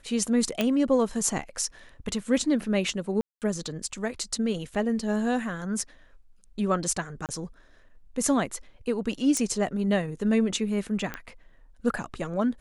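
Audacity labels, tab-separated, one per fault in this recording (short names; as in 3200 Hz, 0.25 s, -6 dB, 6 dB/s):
0.610000	0.610000	pop -10 dBFS
3.210000	3.420000	gap 0.208 s
4.740000	4.740000	gap 3.5 ms
7.260000	7.290000	gap 28 ms
9.370000	9.370000	pop -14 dBFS
11.140000	11.140000	pop -18 dBFS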